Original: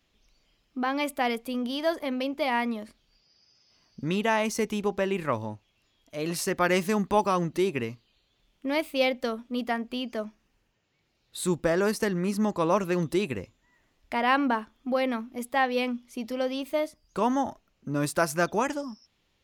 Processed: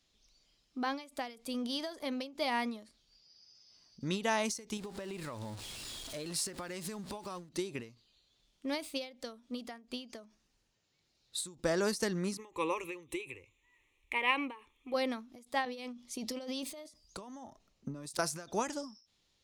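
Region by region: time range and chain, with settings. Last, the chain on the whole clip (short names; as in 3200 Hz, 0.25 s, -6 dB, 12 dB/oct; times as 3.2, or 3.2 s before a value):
4.77–7.49 zero-crossing step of -36.5 dBFS + bell 6100 Hz -5.5 dB 0.27 oct + compressor 16:1, threshold -31 dBFS
12.37–14.94 bell 2400 Hz +13.5 dB 0.47 oct + fixed phaser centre 1000 Hz, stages 8
15.65–18.19 bell 1500 Hz -6.5 dB 0.22 oct + negative-ratio compressor -35 dBFS + three-band expander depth 40%
whole clip: band shelf 6000 Hz +9 dB; ending taper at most 140 dB/s; gain -6.5 dB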